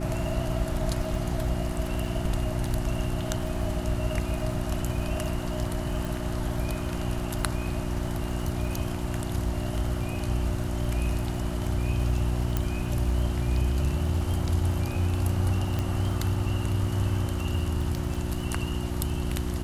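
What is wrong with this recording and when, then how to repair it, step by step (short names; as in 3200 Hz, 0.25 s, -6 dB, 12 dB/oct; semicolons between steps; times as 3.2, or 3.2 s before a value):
crackle 46/s -36 dBFS
hum 60 Hz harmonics 6 -32 dBFS
6.05 pop
12.57 pop
15.79 pop -16 dBFS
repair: de-click; de-hum 60 Hz, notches 6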